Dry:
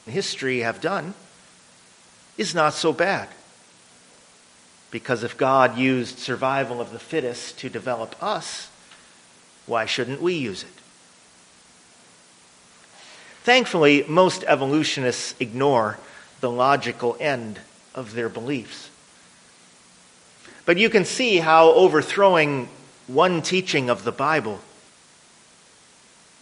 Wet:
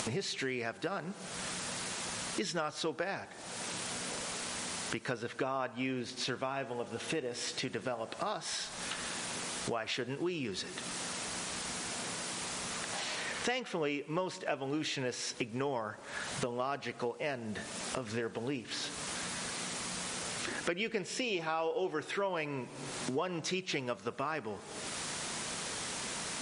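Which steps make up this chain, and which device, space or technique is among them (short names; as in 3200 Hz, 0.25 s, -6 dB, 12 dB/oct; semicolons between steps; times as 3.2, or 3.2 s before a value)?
upward and downward compression (upward compressor, threshold -25 dBFS; compressor 5:1, threshold -34 dBFS, peak gain reduction 22.5 dB)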